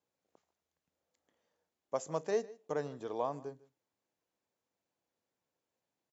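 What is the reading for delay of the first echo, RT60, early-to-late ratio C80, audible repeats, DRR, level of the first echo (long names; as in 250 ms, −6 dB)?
151 ms, no reverb audible, no reverb audible, 1, no reverb audible, −21.5 dB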